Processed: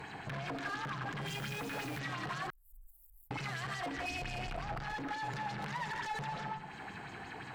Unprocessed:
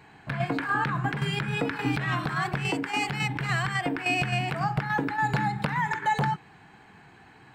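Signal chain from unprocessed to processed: 3.97–4.8 octaver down 2 oct, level +2 dB; reverb RT60 0.50 s, pre-delay 0.115 s, DRR 7.5 dB; limiter -25.5 dBFS, peak gain reduction 13 dB; tube stage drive 37 dB, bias 0.55; 1.26–1.98 added noise white -55 dBFS; 2.5–3.31 inverse Chebyshev band-stop 130–5700 Hz, stop band 60 dB; compressor 2.5:1, threshold -52 dBFS, peak gain reduction 9.5 dB; LFO bell 5.7 Hz 500–6900 Hz +8 dB; gain +8 dB

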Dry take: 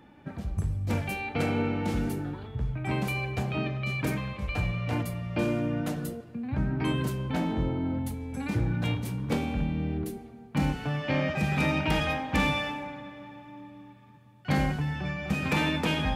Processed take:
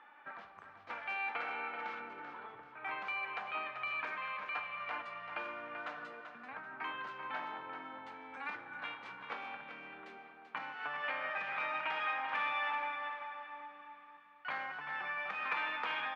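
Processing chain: 2–2.7 tilt shelf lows +6 dB, about 1300 Hz; compressor, threshold -31 dBFS, peak gain reduction 11.5 dB; ladder band-pass 1500 Hz, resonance 35%; air absorption 120 m; feedback echo 0.387 s, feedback 33%, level -9 dB; gain +14.5 dB

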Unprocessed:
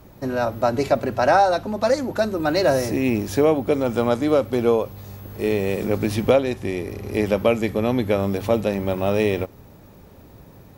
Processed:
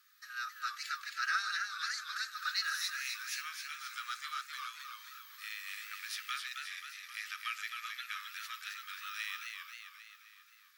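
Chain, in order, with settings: rippled Chebyshev high-pass 1200 Hz, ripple 6 dB; warbling echo 0.265 s, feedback 56%, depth 121 cents, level -5 dB; gain -4.5 dB

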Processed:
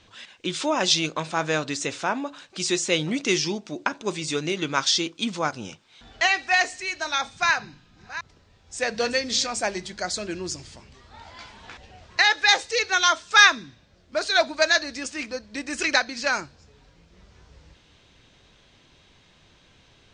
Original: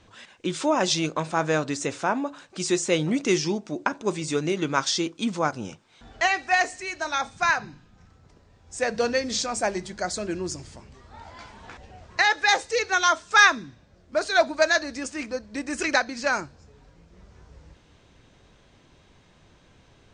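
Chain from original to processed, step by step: 7.47–9.47 reverse delay 0.37 s, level -12 dB; bell 3600 Hz +8.5 dB 1.9 oct; gain -2.5 dB

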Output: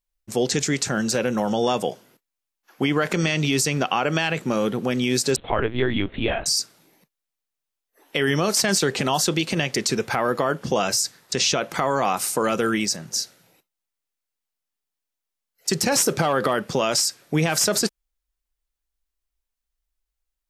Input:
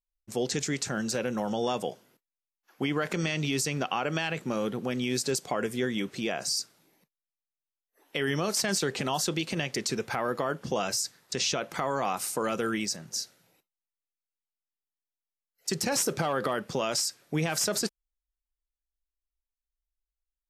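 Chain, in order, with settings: 5.36–6.46 LPC vocoder at 8 kHz pitch kept; gain +7.5 dB

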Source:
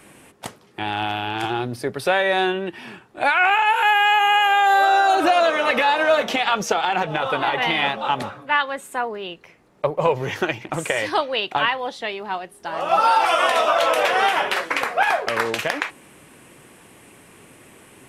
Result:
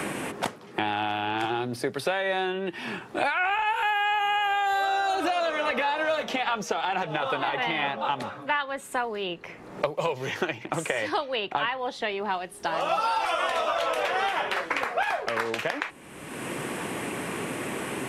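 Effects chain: high shelf 11000 Hz -5.5 dB; three-band squash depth 100%; gain -8 dB

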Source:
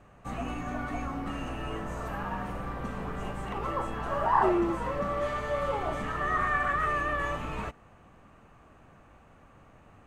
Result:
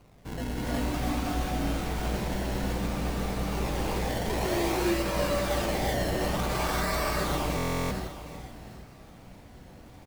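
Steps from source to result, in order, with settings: sample sorter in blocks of 16 samples; LPF 1300 Hz 6 dB/oct; reverse; upward compressor, threshold -50 dBFS; reverse; limiter -25 dBFS, peak gain reduction 11 dB; decimation with a swept rate 25×, swing 100% 0.56 Hz; on a send: echo 0.761 s -13 dB; on the sum: non-linear reverb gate 0.41 s rising, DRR -5 dB; stuck buffer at 7.56, samples 1024, times 14

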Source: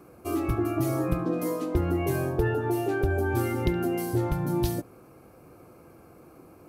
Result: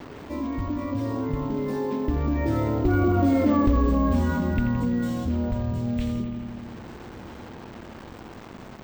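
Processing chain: Doppler pass-by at 2.61, 35 m/s, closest 11 m; companded quantiser 6-bit; air absorption 82 m; wide varispeed 0.756×; analogue delay 84 ms, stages 2048, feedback 66%, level -10 dB; careless resampling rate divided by 2×, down filtered, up hold; fast leveller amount 50%; gain +4.5 dB

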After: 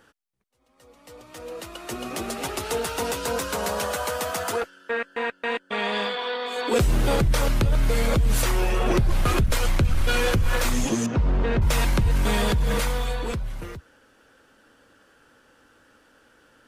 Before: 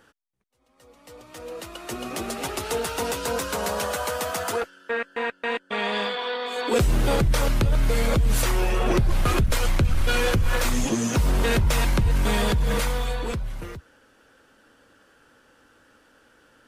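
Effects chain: 11.06–11.62 tape spacing loss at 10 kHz 32 dB

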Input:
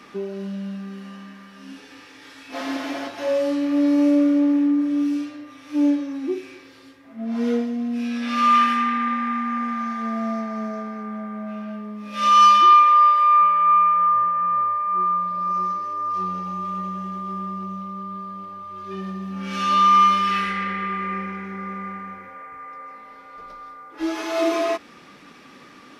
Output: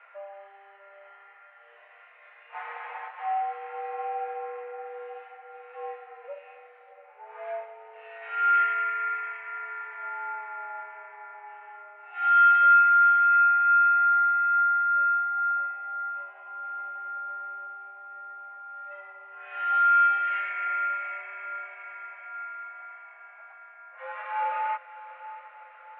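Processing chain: mistuned SSB +200 Hz 470–2200 Hz; diffused feedback echo 0.685 s, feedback 57%, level -14 dB; gain -5.5 dB

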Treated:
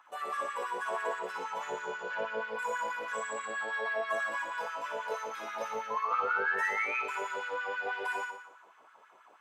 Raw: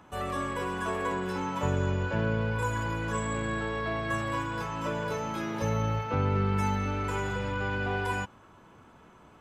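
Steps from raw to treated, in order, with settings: painted sound rise, 5.9–7, 1000–2600 Hz -31 dBFS; flutter echo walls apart 10.1 m, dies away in 0.78 s; LFO high-pass sine 6.2 Hz 520–1600 Hz; gain -7 dB

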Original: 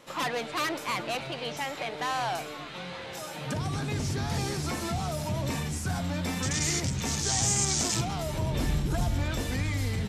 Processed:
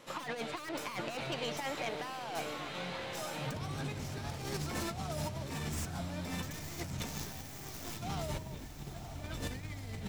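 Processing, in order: tracing distortion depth 0.15 ms; negative-ratio compressor -33 dBFS, ratio -0.5; diffused feedback echo 0.971 s, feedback 56%, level -11 dB; gain -6 dB

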